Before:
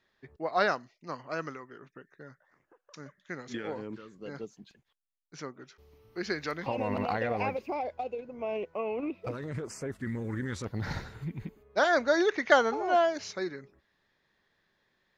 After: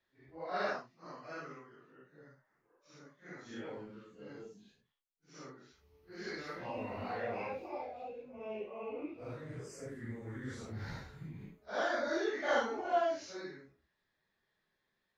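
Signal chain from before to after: phase scrambler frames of 0.2 s; gain -8.5 dB

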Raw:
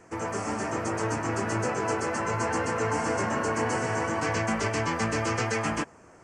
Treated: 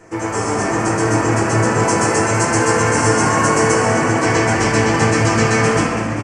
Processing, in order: 1.79–3.72 high shelf 5700 Hz +8 dB; reverb RT60 2.5 s, pre-delay 6 ms, DRR -4 dB; dynamic EQ 8700 Hz, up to +5 dB, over -46 dBFS, Q 0.83; frequency-shifting echo 0.197 s, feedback 64%, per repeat +39 Hz, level -12 dB; gain +6 dB

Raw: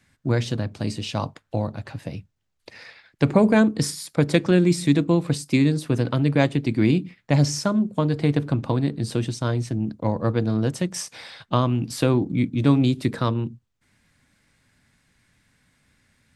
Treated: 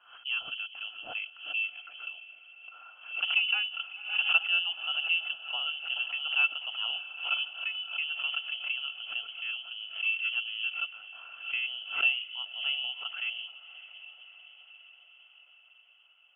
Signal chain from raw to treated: vocal tract filter e; diffused feedback echo 0.623 s, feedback 64%, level -15.5 dB; inverted band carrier 3200 Hz; narrowing echo 0.429 s, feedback 83%, band-pass 490 Hz, level -16 dB; backwards sustainer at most 110 dB/s; gain +1 dB

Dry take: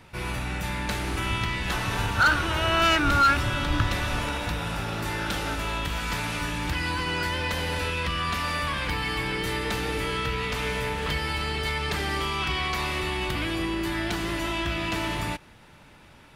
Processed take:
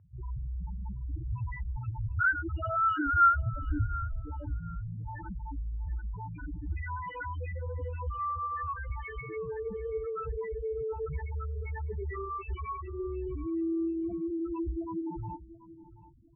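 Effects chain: dynamic EQ 410 Hz, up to +3 dB, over -44 dBFS, Q 3.9; loudest bins only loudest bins 2; inverse Chebyshev low-pass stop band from 6100 Hz, stop band 60 dB; on a send: feedback echo 0.731 s, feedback 24%, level -17 dB

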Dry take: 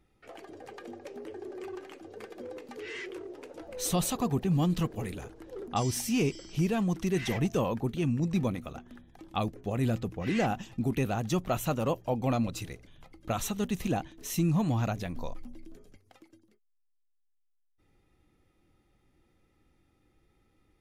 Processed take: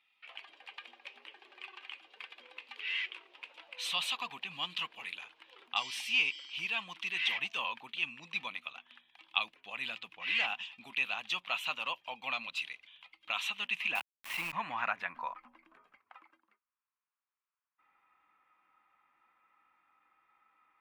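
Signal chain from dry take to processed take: band-pass sweep 3300 Hz -> 1300 Hz, 13.29–15.5; 13.95–14.53 requantised 8-bit, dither none; fifteen-band EQ 100 Hz -12 dB, 400 Hz -8 dB, 1000 Hz +11 dB, 2500 Hz +10 dB, 6300 Hz -7 dB; gain +5.5 dB

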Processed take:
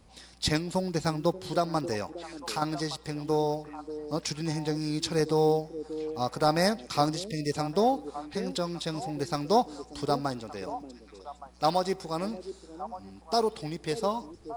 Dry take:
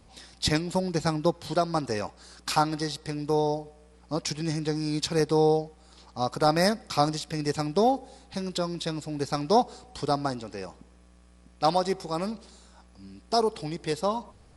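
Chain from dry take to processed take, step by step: block floating point 7-bit; 2.03–2.62 compressor 2:1, threshold -33 dBFS, peak gain reduction 9 dB; delay with a stepping band-pass 0.584 s, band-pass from 340 Hz, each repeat 1.4 oct, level -8.5 dB; 7.27–7.52 spectral delete 650–1800 Hz; gain -2 dB

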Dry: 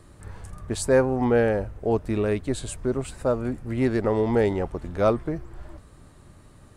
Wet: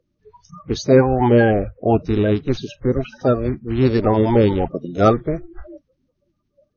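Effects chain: bin magnitudes rounded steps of 30 dB; spectral noise reduction 29 dB; brick-wall FIR low-pass 6600 Hz; gain +7.5 dB

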